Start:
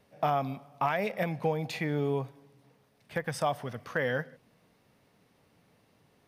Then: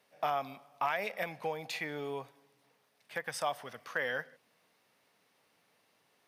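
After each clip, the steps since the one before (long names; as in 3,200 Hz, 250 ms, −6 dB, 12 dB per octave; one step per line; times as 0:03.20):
high-pass filter 1,000 Hz 6 dB per octave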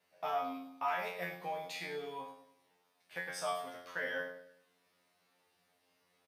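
tuned comb filter 89 Hz, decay 0.47 s, harmonics all, mix 100%
on a send: repeating echo 101 ms, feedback 38%, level −11 dB
on the sum: level +7.5 dB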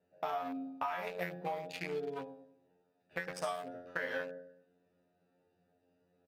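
adaptive Wiener filter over 41 samples
downward compressor 12 to 1, threshold −41 dBFS, peak gain reduction 12 dB
level +8 dB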